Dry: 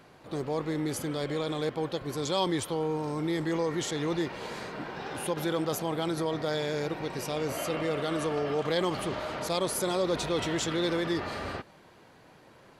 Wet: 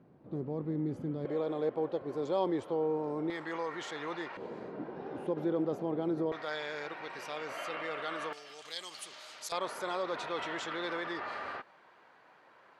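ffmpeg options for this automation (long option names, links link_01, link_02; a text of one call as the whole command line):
ffmpeg -i in.wav -af "asetnsamples=nb_out_samples=441:pad=0,asendcmd='1.25 bandpass f 500;3.3 bandpass f 1300;4.37 bandpass f 340;6.32 bandpass f 1600;8.33 bandpass f 6800;9.52 bandpass f 1300',bandpass=frequency=200:width_type=q:width=1:csg=0" out.wav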